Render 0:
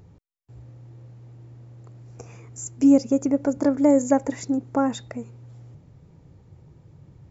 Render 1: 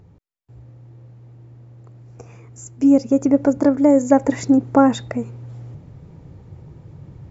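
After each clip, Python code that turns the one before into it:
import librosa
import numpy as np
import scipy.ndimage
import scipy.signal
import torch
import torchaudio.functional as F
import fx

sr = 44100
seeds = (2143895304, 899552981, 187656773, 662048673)

y = fx.high_shelf(x, sr, hz=4700.0, db=-8.0)
y = fx.rider(y, sr, range_db=10, speed_s=0.5)
y = y * librosa.db_to_amplitude(5.5)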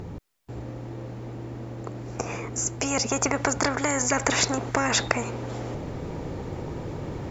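y = fx.spectral_comp(x, sr, ratio=4.0)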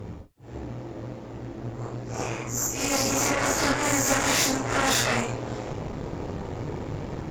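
y = fx.phase_scramble(x, sr, seeds[0], window_ms=200)
y = fx.cheby_harmonics(y, sr, harmonics=(6,), levels_db=(-14,), full_scale_db=-11.0)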